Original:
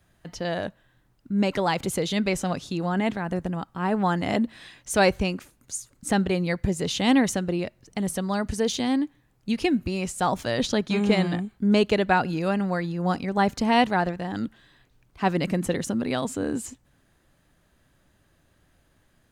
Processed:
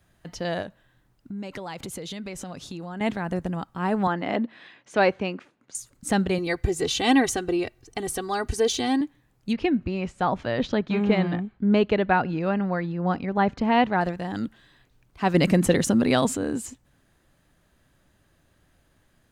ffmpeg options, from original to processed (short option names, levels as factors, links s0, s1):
-filter_complex "[0:a]asettb=1/sr,asplit=3[s0][s1][s2];[s0]atrim=end=0.624[s3];[s1]atrim=start=0.62:end=3.01,asetpts=PTS-STARTPTS,afade=t=in:d=0.004:c=qsin,afade=t=out:st=2.386:d=0.004:c=qsin,acompressor=threshold=0.0251:ratio=6:attack=3.2:release=140:knee=1:detection=peak[s4];[s2]atrim=start=3.006[s5];[s3][s4]acrossfade=d=0.004:c1=hsin:c2=qsin[s6];[s6][s5]acrossfade=d=0.004:c1=qsin:c2=hsin,asettb=1/sr,asplit=3[s7][s8][s9];[s7]atrim=end=4.074[s10];[s8]atrim=start=4.07:end=5.75,asetpts=PTS-STARTPTS,afade=t=in:d=0.004:c=qsin,afade=t=out:st=1.676:d=0.004:c=qsin,highpass=220,lowpass=2900[s11];[s9]atrim=start=5.746[s12];[s10][s11]acrossfade=d=0.004:c1=hsin:c2=qsin[s13];[s13][s12]acrossfade=d=0.004:c1=qsin:c2=hsin,asettb=1/sr,asplit=3[s14][s15][s16];[s14]atrim=end=6.384[s17];[s15]atrim=start=6.38:end=9.01,asetpts=PTS-STARTPTS,afade=t=in:d=0.004:c=qsin,afade=t=out:st=2.626:d=0.004:c=qsin,aecho=1:1:2.6:0.76,atrim=end_sample=115983[s18];[s16]atrim=start=9.006[s19];[s17][s18]acrossfade=d=0.004:c1=hsin:c2=qsin[s20];[s20][s19]acrossfade=d=0.004:c1=qsin:c2=hsin,asettb=1/sr,asplit=3[s21][s22][s23];[s21]atrim=end=9.534[s24];[s22]atrim=start=9.53:end=14.01,asetpts=PTS-STARTPTS,afade=t=in:d=0.004:c=qsin,afade=t=out:st=4.476:d=0.004:c=qsin,lowpass=2700[s25];[s23]atrim=start=14.006[s26];[s24][s25]acrossfade=d=0.004:c1=hsin:c2=qsin[s27];[s27][s26]acrossfade=d=0.004:c1=qsin:c2=hsin,asettb=1/sr,asplit=3[s28][s29][s30];[s28]atrim=end=15.344[s31];[s29]atrim=start=15.34:end=16.37,asetpts=PTS-STARTPTS,afade=t=in:d=0.004:c=qsin,afade=t=out:st=1.026:d=0.004:c=qsin,acontrast=59[s32];[s30]atrim=start=16.366[s33];[s31][s32]acrossfade=d=0.004:c1=hsin:c2=qsin[s34];[s34][s33]acrossfade=d=0.004:c1=qsin:c2=hsin"